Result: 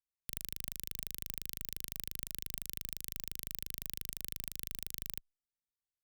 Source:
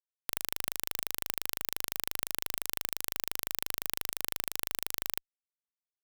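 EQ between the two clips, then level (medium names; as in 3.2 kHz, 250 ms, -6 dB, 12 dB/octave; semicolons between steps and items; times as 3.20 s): amplifier tone stack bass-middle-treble 10-0-1; +13.5 dB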